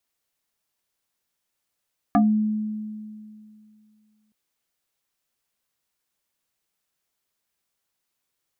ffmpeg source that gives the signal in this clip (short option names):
-f lavfi -i "aevalsrc='0.224*pow(10,-3*t/2.45)*sin(2*PI*214*t+2.2*pow(10,-3*t/0.21)*sin(2*PI*2.3*214*t))':d=2.17:s=44100"